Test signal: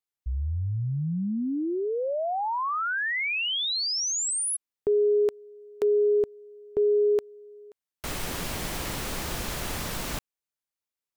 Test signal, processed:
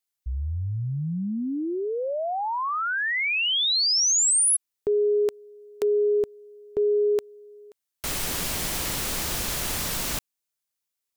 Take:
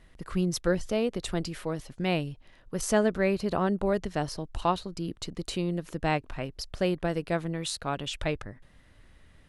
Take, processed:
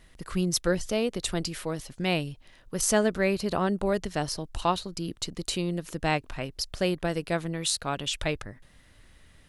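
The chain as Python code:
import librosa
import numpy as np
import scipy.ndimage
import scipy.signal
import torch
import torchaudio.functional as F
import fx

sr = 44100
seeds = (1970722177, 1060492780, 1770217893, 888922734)

y = fx.high_shelf(x, sr, hz=3100.0, db=8.5)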